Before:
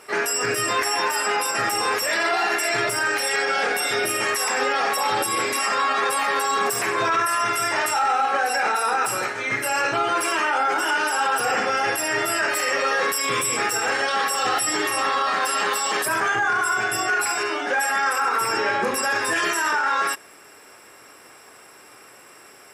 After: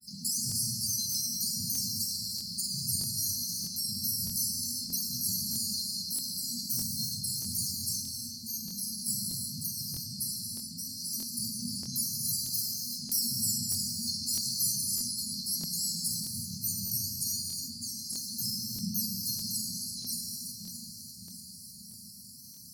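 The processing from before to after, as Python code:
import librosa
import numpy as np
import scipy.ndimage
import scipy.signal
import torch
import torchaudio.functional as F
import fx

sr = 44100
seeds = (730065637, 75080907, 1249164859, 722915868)

p1 = scipy.signal.sosfilt(scipy.signal.butter(2, 66.0, 'highpass', fs=sr, output='sos'), x)
p2 = fx.peak_eq(p1, sr, hz=140.0, db=-3.0, octaves=0.8)
p3 = fx.fixed_phaser(p2, sr, hz=3000.0, stages=4)
p4 = p3 + fx.echo_feedback(p3, sr, ms=597, feedback_pct=58, wet_db=-13.0, dry=0)
p5 = fx.granulator(p4, sr, seeds[0], grain_ms=100.0, per_s=20.0, spray_ms=24.0, spread_st=3)
p6 = fx.over_compress(p5, sr, threshold_db=-35.0, ratio=-1.0)
p7 = p5 + F.gain(torch.from_numpy(p6), -1.5).numpy()
p8 = fx.brickwall_bandstop(p7, sr, low_hz=240.0, high_hz=4100.0)
p9 = fx.doubler(p8, sr, ms=46.0, db=-13.0)
p10 = fx.rev_gated(p9, sr, seeds[1], gate_ms=400, shape='flat', drr_db=0.0)
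y = fx.buffer_crackle(p10, sr, first_s=0.47, period_s=0.63, block=1024, kind='repeat')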